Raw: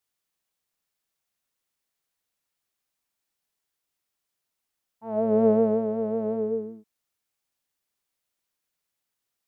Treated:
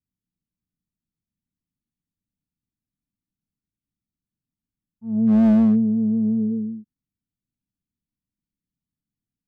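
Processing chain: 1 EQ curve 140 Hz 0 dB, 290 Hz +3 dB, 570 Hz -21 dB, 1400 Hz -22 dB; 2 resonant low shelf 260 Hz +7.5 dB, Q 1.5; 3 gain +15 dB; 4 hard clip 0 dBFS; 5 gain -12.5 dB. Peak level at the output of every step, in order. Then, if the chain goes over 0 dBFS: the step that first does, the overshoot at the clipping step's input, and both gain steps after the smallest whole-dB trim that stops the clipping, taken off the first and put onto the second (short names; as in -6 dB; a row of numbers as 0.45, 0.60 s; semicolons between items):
-15.0, -9.5, +5.5, 0.0, -12.5 dBFS; step 3, 5.5 dB; step 3 +9 dB, step 5 -6.5 dB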